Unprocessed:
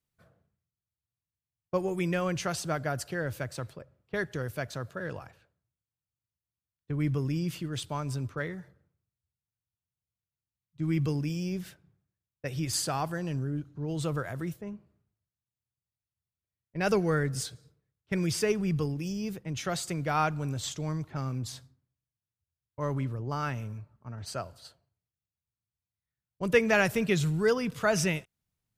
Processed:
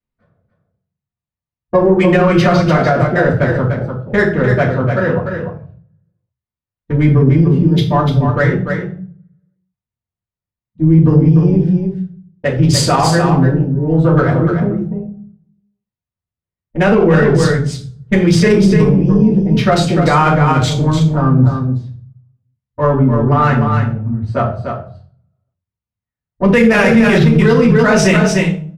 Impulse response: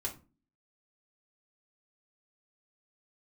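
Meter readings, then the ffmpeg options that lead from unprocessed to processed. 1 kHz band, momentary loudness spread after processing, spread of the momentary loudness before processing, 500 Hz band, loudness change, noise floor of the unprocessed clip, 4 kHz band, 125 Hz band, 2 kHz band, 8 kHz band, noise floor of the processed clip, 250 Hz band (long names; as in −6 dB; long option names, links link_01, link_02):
+18.5 dB, 11 LU, 13 LU, +18.0 dB, +18.5 dB, below −85 dBFS, +14.5 dB, +21.0 dB, +16.0 dB, +10.5 dB, below −85 dBFS, +21.0 dB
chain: -filter_complex "[0:a]afwtdn=0.00794,adynamicsmooth=sensitivity=5:basefreq=2900,aecho=1:1:296:0.473[link_01];[1:a]atrim=start_sample=2205,asetrate=26460,aresample=44100[link_02];[link_01][link_02]afir=irnorm=-1:irlink=0,alimiter=level_in=17dB:limit=-1dB:release=50:level=0:latency=1,volume=-1dB"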